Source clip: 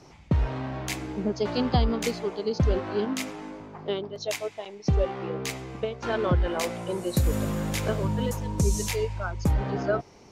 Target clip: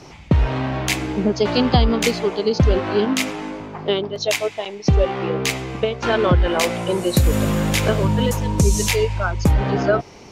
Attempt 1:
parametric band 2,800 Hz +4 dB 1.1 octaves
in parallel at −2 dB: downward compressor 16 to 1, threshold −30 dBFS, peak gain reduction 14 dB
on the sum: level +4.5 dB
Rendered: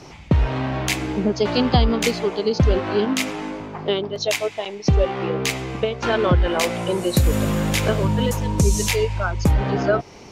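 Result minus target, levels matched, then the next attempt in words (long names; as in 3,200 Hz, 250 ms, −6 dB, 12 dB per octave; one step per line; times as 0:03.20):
downward compressor: peak gain reduction +5.5 dB
parametric band 2,800 Hz +4 dB 1.1 octaves
in parallel at −2 dB: downward compressor 16 to 1, threshold −24 dBFS, peak gain reduction 8.5 dB
on the sum: level +4.5 dB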